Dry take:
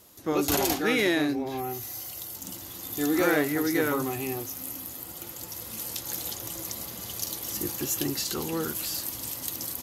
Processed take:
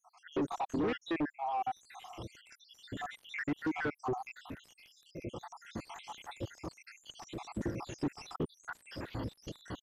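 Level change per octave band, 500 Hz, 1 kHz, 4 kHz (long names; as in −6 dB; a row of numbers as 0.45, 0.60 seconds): −11.0, −4.0, −15.0 decibels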